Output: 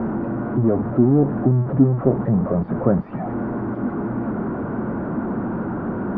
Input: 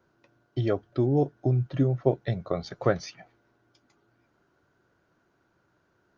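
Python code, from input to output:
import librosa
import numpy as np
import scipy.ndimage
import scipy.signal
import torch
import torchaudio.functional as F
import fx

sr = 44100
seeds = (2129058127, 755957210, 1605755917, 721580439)

y = x + 0.5 * 10.0 ** (-22.0 / 20.0) * np.sign(x)
y = scipy.signal.sosfilt(scipy.signal.butter(4, 1200.0, 'lowpass', fs=sr, output='sos'), y)
y = fx.peak_eq(y, sr, hz=220.0, db=15.0, octaves=0.68)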